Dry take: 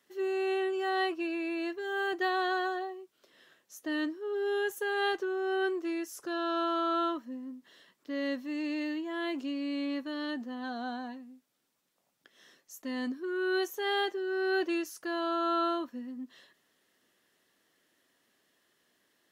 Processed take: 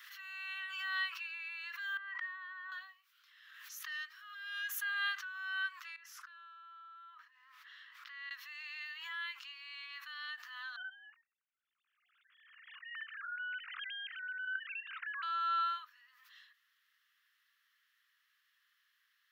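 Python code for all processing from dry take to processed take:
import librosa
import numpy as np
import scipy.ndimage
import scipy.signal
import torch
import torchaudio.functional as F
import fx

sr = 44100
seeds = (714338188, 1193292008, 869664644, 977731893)

y = fx.chain(x, sr, fx.lowpass(hz=2700.0, slope=12),
    fx.level_steps(step_db=23),
    fx.small_body(hz=(1000.0, 1900.0), ring_ms=30, db=17), at=(1.97, 2.72))
y = fx.chain(y, sr, fx.highpass(hz=1400.0, slope=12),
    fx.transformer_sat(knee_hz=1600.0), at=(3.87, 4.69))
y = fx.chain(y, sr, fx.lowpass(hz=1800.0, slope=6),
    fx.over_compress(threshold_db=-45.0, ratio=-1.0), at=(5.96, 8.31))
y = fx.chain(y, sr, fx.sine_speech(),
    fx.brickwall_highpass(low_hz=620.0),
    fx.level_steps(step_db=10), at=(10.76, 15.23))
y = scipy.signal.sosfilt(scipy.signal.butter(8, 1200.0, 'highpass', fs=sr, output='sos'), y)
y = fx.peak_eq(y, sr, hz=8400.0, db=-14.0, octaves=1.1)
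y = fx.pre_swell(y, sr, db_per_s=38.0)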